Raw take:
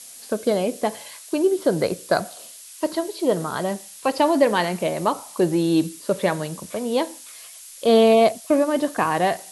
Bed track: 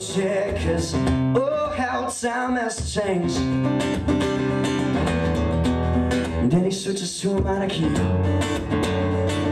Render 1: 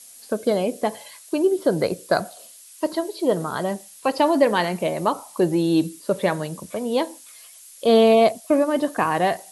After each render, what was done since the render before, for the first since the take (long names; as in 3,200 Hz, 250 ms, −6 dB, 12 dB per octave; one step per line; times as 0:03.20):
broadband denoise 6 dB, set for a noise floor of −42 dBFS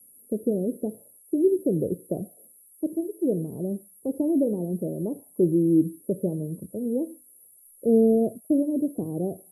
inverse Chebyshev band-stop filter 1,600–4,000 Hz, stop band 80 dB
dynamic equaliser 990 Hz, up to −3 dB, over −45 dBFS, Q 2.4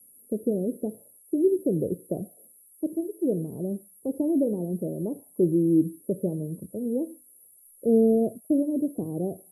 level −1 dB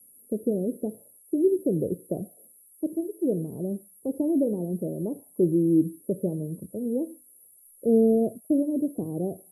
no processing that can be heard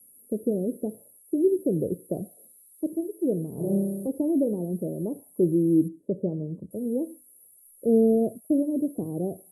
0:02.13–0:02.90: parametric band 4,100 Hz +14 dB
0:03.54–0:04.07: flutter between parallel walls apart 5.2 metres, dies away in 1.2 s
0:05.88–0:06.71: high-frequency loss of the air 150 metres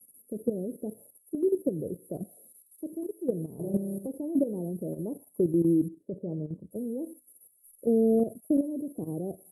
output level in coarse steps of 11 dB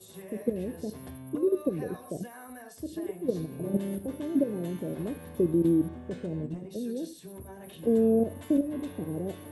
mix in bed track −23 dB